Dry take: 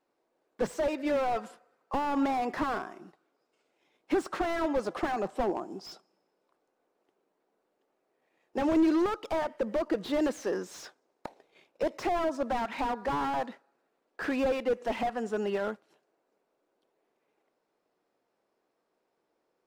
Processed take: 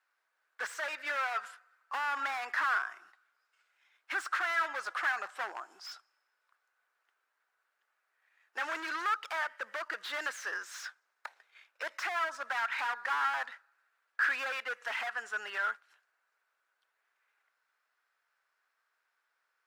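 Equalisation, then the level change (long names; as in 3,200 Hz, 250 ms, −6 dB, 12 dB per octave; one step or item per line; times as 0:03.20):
high-pass with resonance 1,500 Hz, resonance Q 3.2
0.0 dB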